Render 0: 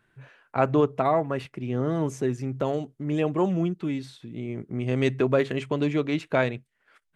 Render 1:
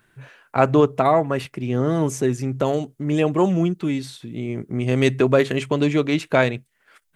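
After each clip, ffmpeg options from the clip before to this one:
-af "highshelf=f=6.1k:g=10.5,volume=5.5dB"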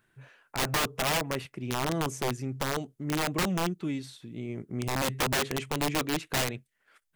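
-af "aeval=exprs='(mod(4.47*val(0)+1,2)-1)/4.47':c=same,volume=-9dB"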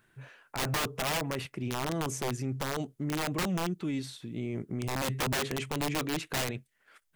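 -af "alimiter=level_in=4.5dB:limit=-24dB:level=0:latency=1:release=12,volume=-4.5dB,volume=3dB"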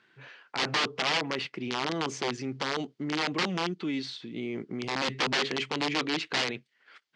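-af "highpass=240,equalizer=f=620:t=q:w=4:g=-5,equalizer=f=2.1k:t=q:w=4:g=3,equalizer=f=3.1k:t=q:w=4:g=4,equalizer=f=4.5k:t=q:w=4:g=5,lowpass=f=5.7k:w=0.5412,lowpass=f=5.7k:w=1.3066,volume=3.5dB"

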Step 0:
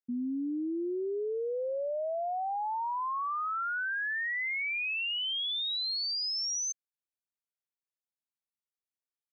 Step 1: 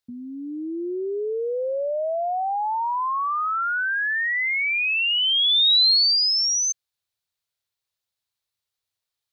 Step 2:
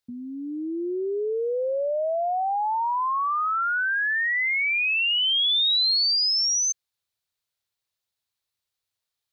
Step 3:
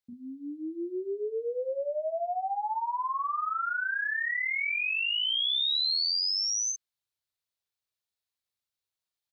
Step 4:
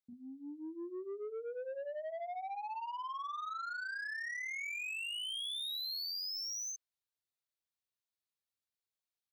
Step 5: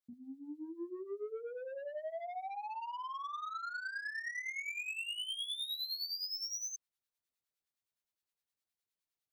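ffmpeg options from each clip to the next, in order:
-af "equalizer=f=100:t=o:w=0.67:g=11,equalizer=f=250:t=o:w=0.67:g=-12,equalizer=f=4k:t=o:w=0.67:g=8,volume=8.5dB"
-af "acompressor=threshold=-20dB:ratio=6"
-filter_complex "[0:a]asplit=2[a][b];[b]adelay=38,volume=-3dB[c];[a][c]amix=inputs=2:normalize=0,volume=-8dB"
-af "asoftclip=type=tanh:threshold=-30dB,volume=-7dB"
-filter_complex "[0:a]acrossover=split=970[a][b];[a]aeval=exprs='val(0)*(1-0.7/2+0.7/2*cos(2*PI*9.7*n/s))':c=same[c];[b]aeval=exprs='val(0)*(1-0.7/2-0.7/2*cos(2*PI*9.7*n/s))':c=same[d];[c][d]amix=inputs=2:normalize=0,volume=3dB"

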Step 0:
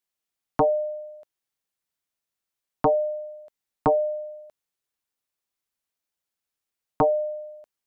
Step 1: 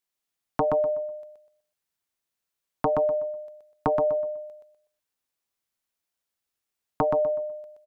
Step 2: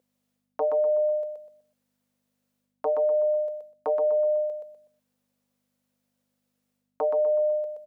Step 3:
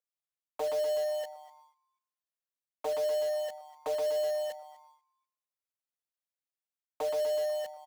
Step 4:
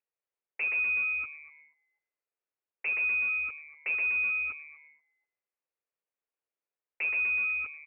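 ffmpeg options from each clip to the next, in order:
-filter_complex "[0:a]acompressor=threshold=-21dB:ratio=6,asplit=2[a][b];[b]aecho=0:1:124|248|372|496:0.562|0.152|0.041|0.0111[c];[a][c]amix=inputs=2:normalize=0"
-af "areverse,acompressor=threshold=-34dB:ratio=8,areverse,aeval=exprs='val(0)+0.00112*(sin(2*PI*50*n/s)+sin(2*PI*2*50*n/s)/2+sin(2*PI*3*50*n/s)/3+sin(2*PI*4*50*n/s)/4+sin(2*PI*5*50*n/s)/5)':c=same,highpass=f=510:t=q:w=5.7,volume=2.5dB"
-filter_complex "[0:a]acrossover=split=590|750[a][b][c];[a]acrusher=bits=5:mix=0:aa=0.000001[d];[d][b][c]amix=inputs=3:normalize=0,asplit=4[e][f][g][h];[f]adelay=244,afreqshift=150,volume=-19.5dB[i];[g]adelay=488,afreqshift=300,volume=-28.4dB[j];[h]adelay=732,afreqshift=450,volume=-37.2dB[k];[e][i][j][k]amix=inputs=4:normalize=0,agate=range=-11dB:threshold=-52dB:ratio=16:detection=peak,volume=-7dB"
-af "equalizer=f=64:w=0.46:g=-10,lowpass=f=2.6k:t=q:w=0.5098,lowpass=f=2.6k:t=q:w=0.6013,lowpass=f=2.6k:t=q:w=0.9,lowpass=f=2.6k:t=q:w=2.563,afreqshift=-3100,equalizer=f=450:w=1.4:g=11.5,volume=1.5dB"

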